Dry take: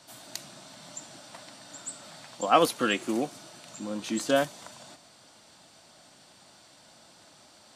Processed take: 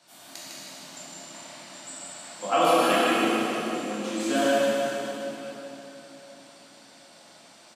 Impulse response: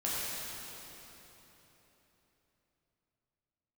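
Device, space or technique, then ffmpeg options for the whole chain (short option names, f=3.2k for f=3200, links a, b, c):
PA in a hall: -filter_complex "[0:a]highpass=180,equalizer=f=2.3k:t=o:w=0.57:g=4,aecho=1:1:153:0.631[a];[1:a]atrim=start_sample=2205[b];[a][b]afir=irnorm=-1:irlink=0,volume=-5dB"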